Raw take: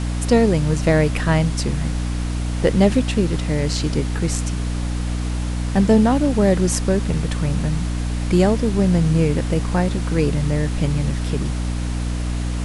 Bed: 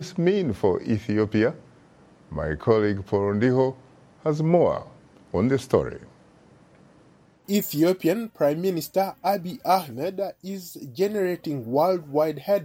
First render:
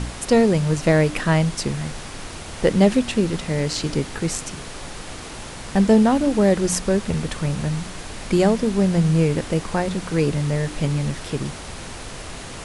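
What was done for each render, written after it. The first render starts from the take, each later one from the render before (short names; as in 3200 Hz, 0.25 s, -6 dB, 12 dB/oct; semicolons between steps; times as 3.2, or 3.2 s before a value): de-hum 60 Hz, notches 5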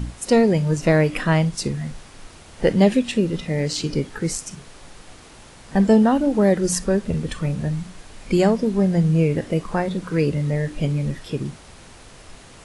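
noise print and reduce 10 dB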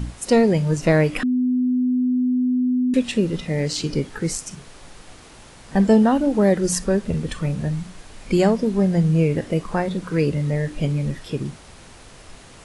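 1.23–2.94 bleep 251 Hz -16.5 dBFS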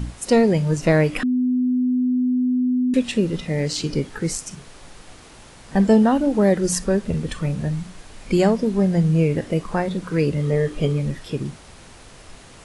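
10.38–11 small resonant body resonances 430/1200/3200 Hz, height 11 dB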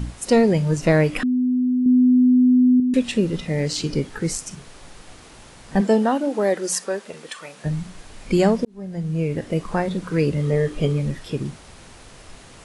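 1.86–2.8 gain +5.5 dB; 5.8–7.64 HPF 240 Hz -> 840 Hz; 8.65–9.68 fade in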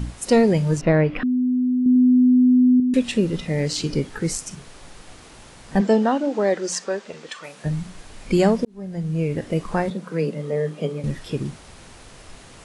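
0.81–1.96 air absorption 320 m; 5.79–7.44 LPF 7400 Hz 24 dB/oct; 9.9–11.04 rippled Chebyshev high-pass 150 Hz, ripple 6 dB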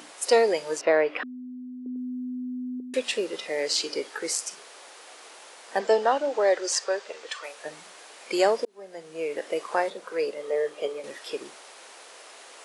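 HPF 430 Hz 24 dB/oct; dynamic EQ 4800 Hz, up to +5 dB, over -53 dBFS, Q 7.4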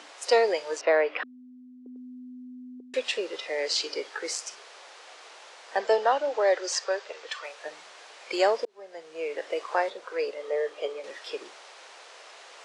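three-band isolator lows -18 dB, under 350 Hz, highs -24 dB, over 7300 Hz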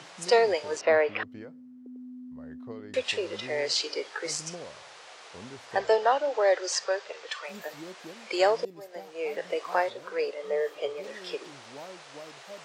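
add bed -23.5 dB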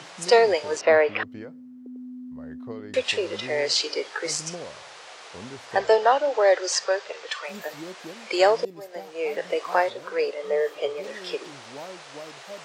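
gain +4.5 dB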